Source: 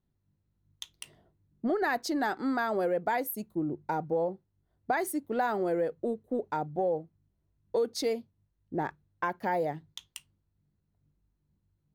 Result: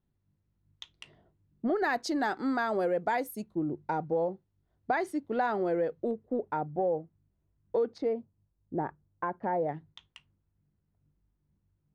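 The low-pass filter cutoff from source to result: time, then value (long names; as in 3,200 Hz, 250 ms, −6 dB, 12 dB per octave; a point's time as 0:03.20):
3,500 Hz
from 0:01.76 8,600 Hz
from 0:03.44 4,700 Hz
from 0:06.11 2,300 Hz
from 0:07.98 1,200 Hz
from 0:09.69 2,400 Hz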